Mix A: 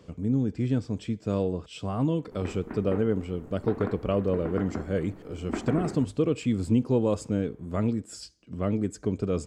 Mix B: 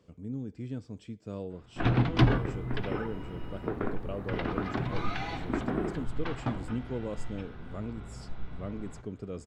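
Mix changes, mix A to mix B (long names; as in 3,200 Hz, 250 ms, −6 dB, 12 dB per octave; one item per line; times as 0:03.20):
speech −11.5 dB
first sound: unmuted
reverb: on, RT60 0.60 s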